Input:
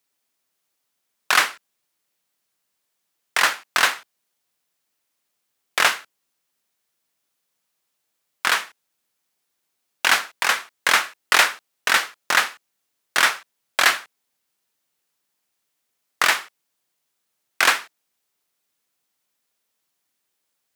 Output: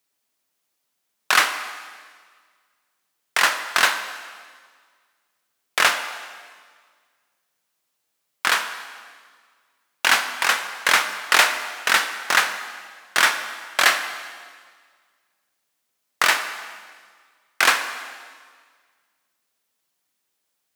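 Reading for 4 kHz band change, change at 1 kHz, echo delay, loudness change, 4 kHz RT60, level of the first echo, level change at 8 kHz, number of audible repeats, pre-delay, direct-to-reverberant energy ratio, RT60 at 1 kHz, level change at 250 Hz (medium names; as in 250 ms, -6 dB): +0.5 dB, +1.0 dB, no echo, 0.0 dB, 1.6 s, no echo, +0.5 dB, no echo, 4 ms, 7.5 dB, 1.7 s, +1.0 dB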